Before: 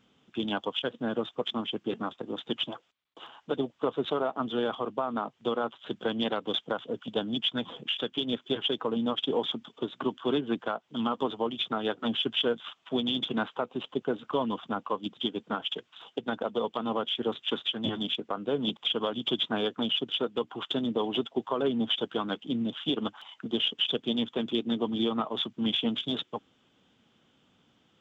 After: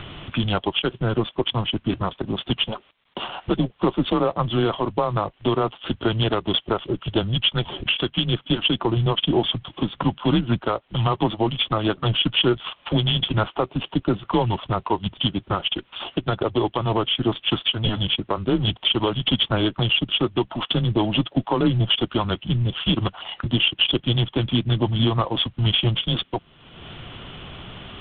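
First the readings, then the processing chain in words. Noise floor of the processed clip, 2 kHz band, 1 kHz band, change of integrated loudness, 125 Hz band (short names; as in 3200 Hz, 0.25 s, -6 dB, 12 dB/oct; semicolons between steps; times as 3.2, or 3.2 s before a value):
-58 dBFS, +9.5 dB, +8.0 dB, +8.5 dB, +21.5 dB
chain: upward compressor, threshold -29 dBFS; frequency shift -110 Hz; gain +8.5 dB; G.726 24 kbps 8000 Hz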